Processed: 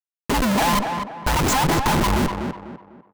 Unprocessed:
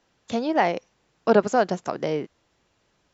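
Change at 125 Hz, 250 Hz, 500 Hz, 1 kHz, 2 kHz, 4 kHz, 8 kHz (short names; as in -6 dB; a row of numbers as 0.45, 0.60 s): +13.0 dB, +5.0 dB, -4.0 dB, +5.5 dB, +7.0 dB, +13.0 dB, n/a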